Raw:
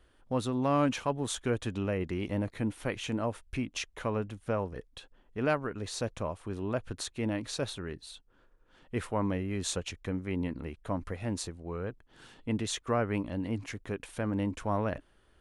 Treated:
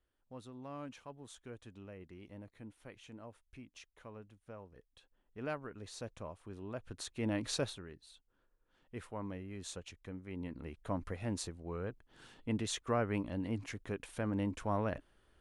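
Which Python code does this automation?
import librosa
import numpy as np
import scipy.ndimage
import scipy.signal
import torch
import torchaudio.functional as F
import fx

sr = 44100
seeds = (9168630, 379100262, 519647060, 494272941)

y = fx.gain(x, sr, db=fx.line((4.67, -19.0), (5.48, -11.0), (6.74, -11.0), (7.54, 0.5), (7.88, -12.0), (10.26, -12.0), (10.84, -4.0)))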